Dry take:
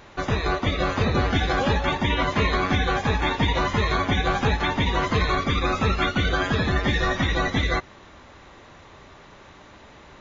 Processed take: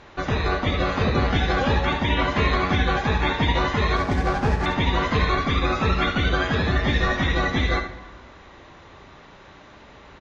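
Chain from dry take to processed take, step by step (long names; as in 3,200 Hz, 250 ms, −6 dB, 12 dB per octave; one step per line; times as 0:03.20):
0:03.96–0:04.66: running median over 15 samples
low-pass filter 5,800 Hz 12 dB per octave
single-tap delay 71 ms −9 dB
dense smooth reverb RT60 1.4 s, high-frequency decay 0.6×, DRR 10 dB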